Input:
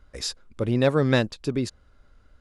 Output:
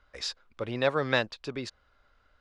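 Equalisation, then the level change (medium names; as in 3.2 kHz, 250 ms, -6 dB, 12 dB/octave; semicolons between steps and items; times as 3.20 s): three-band isolator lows -13 dB, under 560 Hz, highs -18 dB, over 5.5 kHz; 0.0 dB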